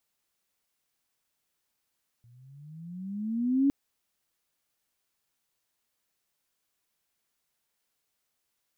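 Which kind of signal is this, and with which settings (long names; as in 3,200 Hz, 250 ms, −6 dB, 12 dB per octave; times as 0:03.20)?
pitch glide with a swell sine, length 1.46 s, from 116 Hz, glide +15.5 semitones, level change +35 dB, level −19 dB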